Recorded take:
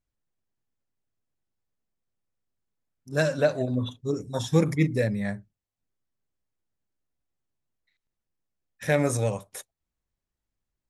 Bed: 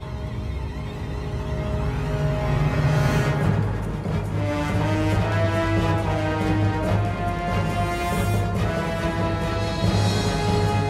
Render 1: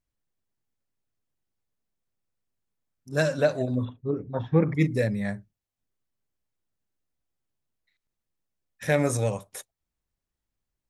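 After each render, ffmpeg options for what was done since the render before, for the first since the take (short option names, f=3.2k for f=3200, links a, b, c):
-filter_complex "[0:a]asettb=1/sr,asplit=3[a][b][c];[a]atrim=end=3.854[d];[b]atrim=start=3.85:end=4.75,asetpts=PTS-STARTPTS,afade=t=in:d=0.004:c=qsin,afade=t=out:st=0.896:d=0.004:c=qsin,lowpass=f=2.2k:w=0.5412,lowpass=f=2.2k:w=1.3066[e];[c]atrim=start=4.746[f];[d][e]acrossfade=d=0.004:c1=hsin:c2=qsin[g];[g][f]acrossfade=d=0.004:c1=qsin:c2=hsin"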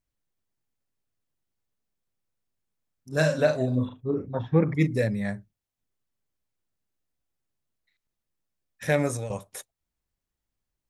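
-filter_complex "[0:a]asettb=1/sr,asplit=3[a][b][c];[a]atrim=end=3.134[d];[b]atrim=start=3.13:end=4.35,asetpts=PTS-STARTPTS,afade=t=in:d=0.004:c=qsin,afade=t=out:st=1.216:d=0.004:c=qsin,asplit=2[e][f];[f]adelay=39,volume=-5dB[g];[e][g]amix=inputs=2:normalize=0,atrim=end_sample=53802[h];[c]atrim=start=4.346[i];[d][h]acrossfade=d=0.004:c1=hsin:c2=qsin[j];[j][i]acrossfade=d=0.004:c1=qsin:c2=hsin,asplit=2[k][l];[k]atrim=end=9.3,asetpts=PTS-STARTPTS,afade=t=out:st=8.85:d=0.45:c=qsin:silence=0.237137[m];[l]atrim=start=9.3,asetpts=PTS-STARTPTS,afade=t=in:d=0.004:c=hsin:silence=0.237137[n];[m][n]concat=n=2:v=0:a=1"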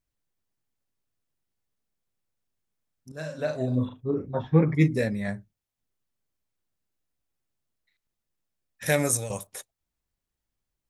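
-filter_complex "[0:a]asettb=1/sr,asplit=3[a][b][c];[a]atrim=end=4.264[d];[b]atrim=start=4.26:end=5.28,asetpts=PTS-STARTPTS,afade=t=in:d=0.004:c=qsin,afade=t=out:st=1.016:d=0.004:c=qsin,asplit=2[e][f];[f]adelay=13,volume=-7dB[g];[e][g]amix=inputs=2:normalize=0,atrim=end_sample=44982[h];[c]atrim=start=5.276[i];[d][h]acrossfade=d=0.004:c1=hsin:c2=qsin[j];[j][i]acrossfade=d=0.004:c1=qsin:c2=hsin,asettb=1/sr,asplit=3[k][l][m];[k]atrim=end=8.864[n];[l]atrim=start=8.86:end=9.47,asetpts=PTS-STARTPTS,afade=t=in:d=0.004:c=qsin,afade=t=out:st=0.606:d=0.004:c=qsin,aemphasis=mode=production:type=75fm[o];[m]atrim=start=9.466[p];[n][o]acrossfade=d=0.004:c1=hsin:c2=qsin[q];[q][p]acrossfade=d=0.004:c1=qsin:c2=hsin,asplit=2[r][s];[r]atrim=end=3.12,asetpts=PTS-STARTPTS,afade=t=out:st=3.116:d=0.004:c=hsin:silence=0.188365[t];[s]atrim=start=3.12,asetpts=PTS-STARTPTS,afade=t=in:d=0.6:c=qua:silence=0.188365[u];[t][u]concat=n=2:v=0:a=1"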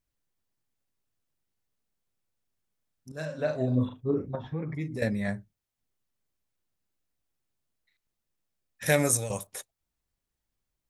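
-filter_complex "[0:a]asettb=1/sr,asplit=3[a][b][c];[a]atrim=end=3.254[d];[b]atrim=start=3.25:end=3.81,asetpts=PTS-STARTPTS,afade=t=in:d=0.004:c=qsin,afade=t=out:st=0.556:d=0.004:c=qsin,lowpass=f=3.7k:p=1[e];[c]atrim=start=3.806[f];[d][e]acrossfade=d=0.004:c1=hsin:c2=qsin[g];[g][f]acrossfade=d=0.004:c1=qsin:c2=hsin,asettb=1/sr,asplit=3[h][i][j];[h]atrim=end=4.354[k];[i]atrim=start=4.35:end=5.02,asetpts=PTS-STARTPTS,afade=t=in:d=0.004:c=qsin,afade=t=out:st=0.666:d=0.004:c=qsin,acompressor=threshold=-34dB:ratio=3:attack=3.2:release=140:knee=1:detection=peak[l];[j]atrim=start=5.016[m];[k][l]acrossfade=d=0.004:c1=hsin:c2=qsin[n];[n][m]acrossfade=d=0.004:c1=qsin:c2=hsin"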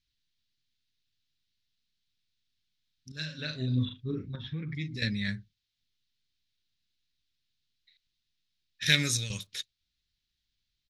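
-af "firequalizer=gain_entry='entry(110,0);entry(360,-8);entry(680,-24);entry(1500,-1);entry(3800,15);entry(8600,-11)':delay=0.05:min_phase=1"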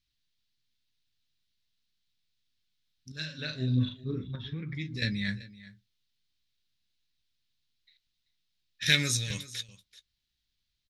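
-filter_complex "[0:a]asplit=2[a][b];[b]adelay=16,volume=-13dB[c];[a][c]amix=inputs=2:normalize=0,aecho=1:1:384:0.119"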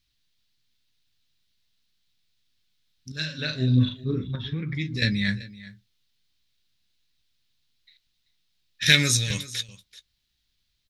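-af "volume=7dB,alimiter=limit=-2dB:level=0:latency=1"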